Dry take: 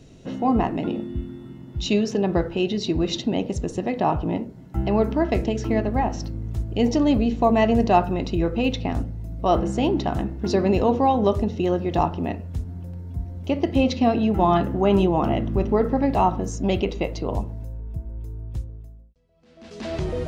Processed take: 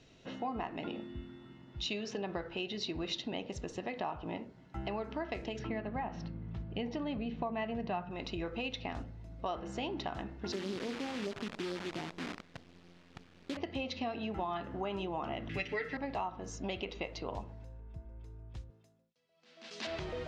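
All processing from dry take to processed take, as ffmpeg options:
ffmpeg -i in.wav -filter_complex "[0:a]asettb=1/sr,asplit=3[link_01][link_02][link_03];[link_01]atrim=end=5.594[link_04];[link_02]atrim=start=5.59:end=8.11,asetpts=PTS-STARTPTS,afade=type=in:duration=0.004:curve=qsin,afade=type=out:start_time=2.516:duration=0.004:curve=qsin,lowpass=3200,equalizer=frequency=170:width=2.7:gain=12[link_05];[link_03]atrim=start=8.106[link_06];[link_04][link_05]acrossfade=duration=0.004:curve1=hsin:curve2=qsin[link_07];[link_07][link_06]acrossfade=duration=0.004:curve1=qsin:curve2=hsin,asettb=1/sr,asplit=3[link_08][link_09][link_10];[link_08]atrim=end=10.524[link_11];[link_09]atrim=start=10.52:end=13.57,asetpts=PTS-STARTPTS,afade=type=in:duration=0.004:curve=qsin,afade=type=out:start_time=3.046:duration=0.004:curve=qsin,asuperpass=centerf=240:order=4:qfactor=0.9,acrusher=bits=6:dc=4:mix=0:aa=0.000001[link_12];[link_10]atrim=start=13.566[link_13];[link_11][link_12]acrossfade=duration=0.004:curve1=hsin:curve2=qsin[link_14];[link_14][link_13]acrossfade=duration=0.004:curve1=qsin:curve2=hsin,asettb=1/sr,asplit=3[link_15][link_16][link_17];[link_15]atrim=end=15.494[link_18];[link_16]atrim=start=15.49:end=15.97,asetpts=PTS-STARTPTS,afade=type=in:duration=0.004:curve=qsin,afade=type=out:start_time=0.476:duration=0.004:curve=qsin,highpass=51,highshelf=frequency=1500:width_type=q:width=3:gain=11.5,aecho=1:1:6.7:0.9,atrim=end_sample=21168[link_19];[link_17]atrim=start=15.966[link_20];[link_18][link_19]acrossfade=duration=0.004:curve1=hsin:curve2=qsin[link_21];[link_21][link_20]acrossfade=duration=0.004:curve1=qsin:curve2=hsin,asettb=1/sr,asplit=3[link_22][link_23][link_24];[link_22]atrim=end=18.704[link_25];[link_23]atrim=start=18.7:end=19.87,asetpts=PTS-STARTPTS,afade=type=in:duration=0.004:curve=qsin,afade=type=out:start_time=1.166:duration=0.004:curve=qsin,highpass=frequency=130:width=0.5412,highpass=frequency=130:width=1.3066,highshelf=frequency=3700:gain=11.5[link_26];[link_24]atrim=start=19.866[link_27];[link_25][link_26]acrossfade=duration=0.004:curve1=hsin:curve2=qsin[link_28];[link_28][link_27]acrossfade=duration=0.004:curve1=qsin:curve2=hsin,lowpass=4200,tiltshelf=frequency=640:gain=-7.5,acompressor=threshold=-25dB:ratio=6,volume=-9dB" out.wav

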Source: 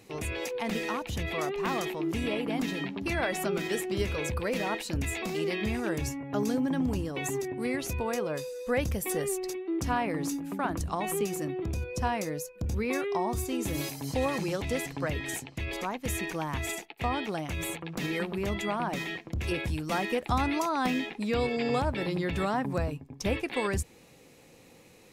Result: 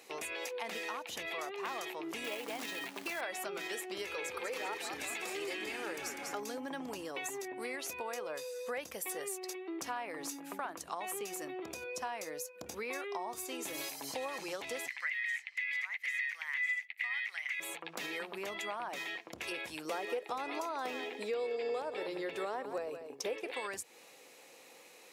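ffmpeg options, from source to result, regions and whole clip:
ffmpeg -i in.wav -filter_complex "[0:a]asettb=1/sr,asplit=3[link_01][link_02][link_03];[link_01]atrim=end=2.244[link_04];[link_02]atrim=start=2.24:end=3.21,asetpts=PTS-STARTPTS,afade=type=in:duration=0.004:curve=qsin,afade=type=out:start_time=0.966:duration=0.004:curve=qsin,highpass=frequency=80:poles=1,acrusher=bits=3:mode=log:mix=0:aa=0.000001[link_05];[link_03]atrim=start=3.206[link_06];[link_04][link_05]acrossfade=duration=0.004:curve1=hsin:curve2=qsin[link_07];[link_07][link_06]acrossfade=duration=0.004:curve1=qsin:curve2=hsin,asettb=1/sr,asplit=3[link_08][link_09][link_10];[link_08]atrim=end=4.044[link_11];[link_09]atrim=start=4.04:end=6.4,asetpts=PTS-STARTPTS,afade=type=in:duration=0.004:curve=qsin,afade=type=out:start_time=2.356:duration=0.004:curve=qsin,aecho=1:1:2.3:0.45,atrim=end_sample=104076,asplit=8[link_12][link_13][link_14][link_15][link_16][link_17][link_18][link_19];[link_13]adelay=197,afreqshift=-88,volume=-6.5dB[link_20];[link_14]adelay=394,afreqshift=-176,volume=-11.5dB[link_21];[link_15]adelay=591,afreqshift=-264,volume=-16.6dB[link_22];[link_16]adelay=788,afreqshift=-352,volume=-21.6dB[link_23];[link_17]adelay=985,afreqshift=-440,volume=-26.6dB[link_24];[link_18]adelay=1182,afreqshift=-528,volume=-31.7dB[link_25];[link_19]adelay=1379,afreqshift=-616,volume=-36.7dB[link_26];[link_12][link_20][link_21][link_22][link_23][link_24][link_25][link_26]amix=inputs=8:normalize=0,atrim=end_sample=104076[link_27];[link_10]atrim=start=6.396[link_28];[link_11][link_27]acrossfade=duration=0.004:curve1=hsin:curve2=qsin[link_29];[link_29][link_28]acrossfade=duration=0.004:curve1=qsin:curve2=hsin,asettb=1/sr,asplit=3[link_30][link_31][link_32];[link_30]atrim=end=14.884[link_33];[link_31]atrim=start=14.88:end=17.6,asetpts=PTS-STARTPTS,afade=type=in:duration=0.004:curve=qsin,afade=type=out:start_time=2.716:duration=0.004:curve=qsin,highpass=frequency=2000:width_type=q:width=14,acrossover=split=5900[link_34][link_35];[link_35]acompressor=threshold=-52dB:ratio=4:attack=1:release=60[link_36];[link_34][link_36]amix=inputs=2:normalize=0[link_37];[link_32]atrim=start=17.596[link_38];[link_33][link_37]acrossfade=duration=0.004:curve1=hsin:curve2=qsin[link_39];[link_39][link_38]acrossfade=duration=0.004:curve1=qsin:curve2=hsin,asettb=1/sr,asplit=3[link_40][link_41][link_42];[link_40]atrim=end=19.854[link_43];[link_41]atrim=start=19.85:end=23.53,asetpts=PTS-STARTPTS,afade=type=in:duration=0.004:curve=qsin,afade=type=out:start_time=3.676:duration=0.004:curve=qsin,equalizer=frequency=440:width=2:gain=13,aecho=1:1:175:0.211,atrim=end_sample=162288[link_44];[link_42]atrim=start=23.526[link_45];[link_43][link_44]acrossfade=duration=0.004:curve1=hsin:curve2=qsin[link_46];[link_46][link_45]acrossfade=duration=0.004:curve1=qsin:curve2=hsin,highpass=550,acompressor=threshold=-41dB:ratio=3,volume=2dB" out.wav

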